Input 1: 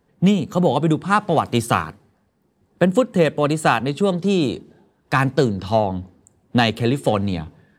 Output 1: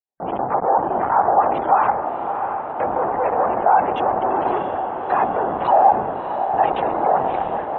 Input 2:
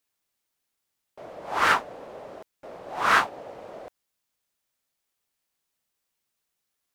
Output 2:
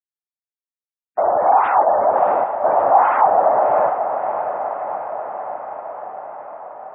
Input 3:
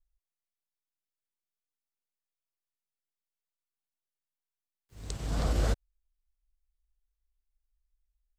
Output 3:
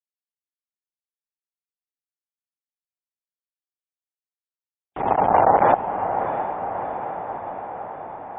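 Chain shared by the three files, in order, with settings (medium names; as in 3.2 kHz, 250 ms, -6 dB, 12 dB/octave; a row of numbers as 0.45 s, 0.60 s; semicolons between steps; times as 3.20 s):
expander -45 dBFS; LPC vocoder at 8 kHz whisper; compressor with a negative ratio -26 dBFS, ratio -1; waveshaping leveller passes 3; peak limiter -17.5 dBFS; waveshaping leveller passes 5; band-pass filter 790 Hz, Q 4.3; spectral gate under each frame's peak -30 dB strong; echo that smears into a reverb 658 ms, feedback 67%, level -8 dB; peak normalisation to -3 dBFS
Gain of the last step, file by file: +11.5 dB, +12.0 dB, +16.5 dB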